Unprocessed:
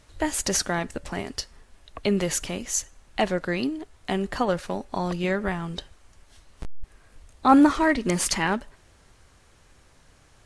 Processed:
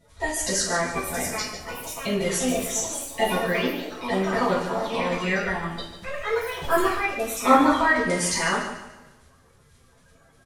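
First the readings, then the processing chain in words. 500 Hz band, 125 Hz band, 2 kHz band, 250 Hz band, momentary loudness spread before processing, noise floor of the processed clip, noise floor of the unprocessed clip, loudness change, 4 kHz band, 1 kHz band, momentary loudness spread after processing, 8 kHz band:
+3.5 dB, -1.0 dB, +5.5 dB, -2.5 dB, 15 LU, -57 dBFS, -57 dBFS, +1.0 dB, +2.5 dB, +3.0 dB, 12 LU, +2.0 dB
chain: coarse spectral quantiser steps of 30 dB; on a send: feedback delay 146 ms, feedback 35%, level -10 dB; on the sum: ever faster or slower copies 770 ms, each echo +4 st, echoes 3, each echo -6 dB; two-slope reverb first 0.45 s, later 1.8 s, from -25 dB, DRR -9.5 dB; trim -8 dB

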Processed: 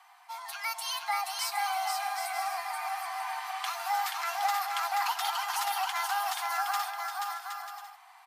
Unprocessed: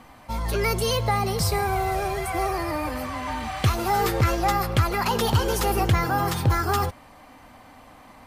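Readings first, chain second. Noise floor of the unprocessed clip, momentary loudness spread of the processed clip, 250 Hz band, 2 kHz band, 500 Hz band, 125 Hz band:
-49 dBFS, 9 LU, under -40 dB, -4.5 dB, -19.5 dB, under -40 dB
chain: Chebyshev high-pass 690 Hz, order 10; on a send: bouncing-ball echo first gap 480 ms, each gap 0.6×, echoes 5; on the sum: trim -6 dB

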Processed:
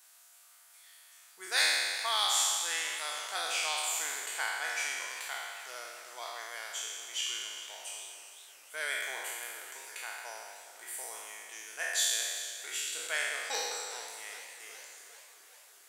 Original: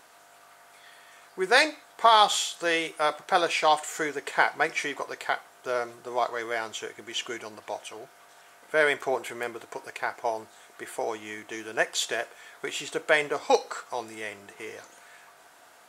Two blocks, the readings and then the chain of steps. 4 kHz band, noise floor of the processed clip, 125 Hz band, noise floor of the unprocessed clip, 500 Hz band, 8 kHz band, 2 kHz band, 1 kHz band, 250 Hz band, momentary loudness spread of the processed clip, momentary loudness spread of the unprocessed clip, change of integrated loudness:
-1.5 dB, -59 dBFS, under -30 dB, -55 dBFS, -18.0 dB, +4.5 dB, -6.5 dB, -13.5 dB, -24.0 dB, 18 LU, 16 LU, -6.0 dB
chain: spectral sustain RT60 1.86 s; differentiator; modulated delay 397 ms, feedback 67%, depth 131 cents, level -16 dB; trim -1.5 dB

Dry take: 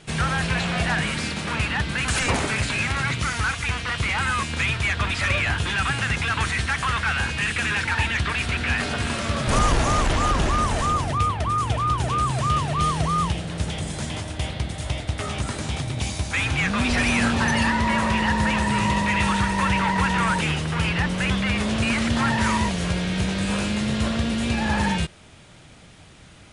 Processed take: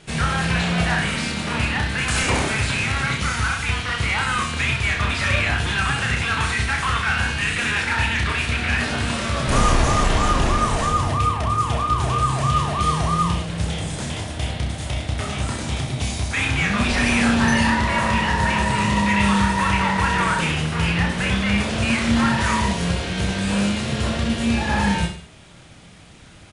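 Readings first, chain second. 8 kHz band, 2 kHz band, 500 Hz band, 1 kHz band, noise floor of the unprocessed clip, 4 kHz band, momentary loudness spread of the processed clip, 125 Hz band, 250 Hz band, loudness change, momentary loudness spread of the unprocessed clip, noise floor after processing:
+2.0 dB, +2.0 dB, +2.0 dB, +2.0 dB, -47 dBFS, +2.5 dB, 7 LU, +2.5 dB, +2.5 dB, +2.0 dB, 7 LU, -43 dBFS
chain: reverse bouncing-ball echo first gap 30 ms, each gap 1.15×, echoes 5

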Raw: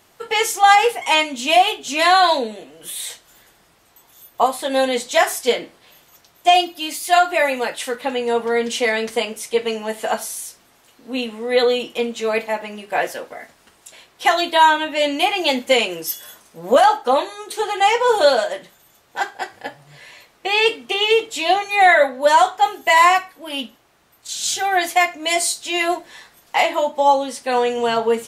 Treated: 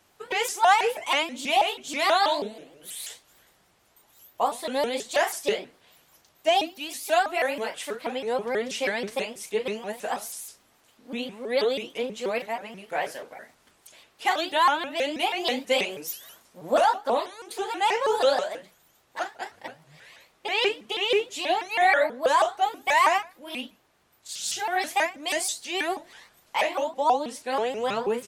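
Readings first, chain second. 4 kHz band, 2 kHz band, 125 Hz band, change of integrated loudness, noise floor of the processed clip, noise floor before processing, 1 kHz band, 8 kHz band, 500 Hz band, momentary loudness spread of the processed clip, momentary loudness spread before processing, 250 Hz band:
-8.0 dB, -8.0 dB, no reading, -8.0 dB, -64 dBFS, -56 dBFS, -8.0 dB, -8.0 dB, -7.5 dB, 14 LU, 14 LU, -8.0 dB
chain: doubling 40 ms -10 dB; vibrato with a chosen wave saw up 6.2 Hz, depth 250 cents; trim -8.5 dB

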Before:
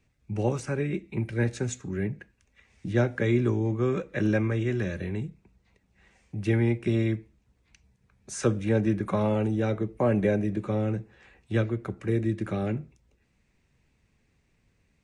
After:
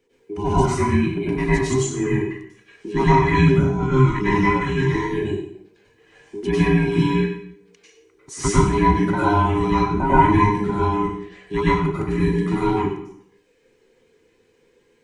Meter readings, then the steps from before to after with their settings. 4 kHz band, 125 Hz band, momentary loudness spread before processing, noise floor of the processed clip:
+11.5 dB, +7.0 dB, 9 LU, -61 dBFS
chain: every band turned upside down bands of 500 Hz; reverb removal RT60 0.85 s; plate-style reverb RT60 0.72 s, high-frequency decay 0.9×, pre-delay 85 ms, DRR -9 dB; trim +1.5 dB

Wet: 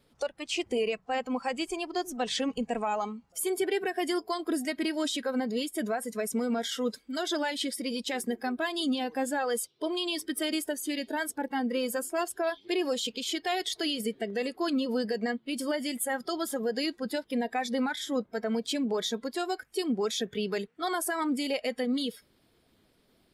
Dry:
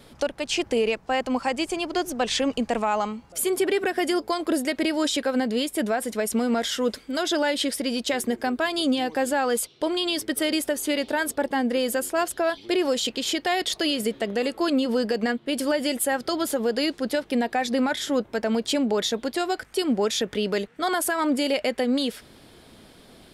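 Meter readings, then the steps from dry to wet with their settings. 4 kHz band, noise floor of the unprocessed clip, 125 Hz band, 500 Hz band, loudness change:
-6.0 dB, -52 dBFS, no reading, -6.5 dB, -6.0 dB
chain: coarse spectral quantiser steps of 15 dB; spectral noise reduction 11 dB; trim -5.5 dB

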